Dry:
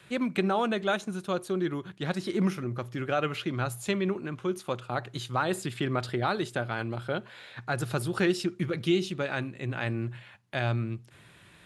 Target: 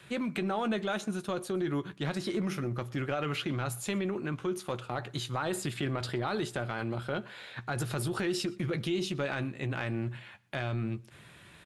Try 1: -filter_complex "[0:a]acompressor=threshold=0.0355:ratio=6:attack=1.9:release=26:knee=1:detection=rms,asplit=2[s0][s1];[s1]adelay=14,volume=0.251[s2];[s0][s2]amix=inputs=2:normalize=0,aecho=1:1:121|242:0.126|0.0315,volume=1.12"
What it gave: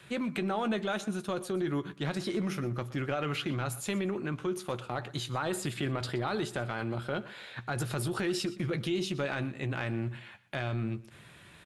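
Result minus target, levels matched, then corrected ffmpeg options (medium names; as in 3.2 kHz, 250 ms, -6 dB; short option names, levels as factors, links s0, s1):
echo-to-direct +7.5 dB
-filter_complex "[0:a]acompressor=threshold=0.0355:ratio=6:attack=1.9:release=26:knee=1:detection=rms,asplit=2[s0][s1];[s1]adelay=14,volume=0.251[s2];[s0][s2]amix=inputs=2:normalize=0,aecho=1:1:121|242:0.0531|0.0133,volume=1.12"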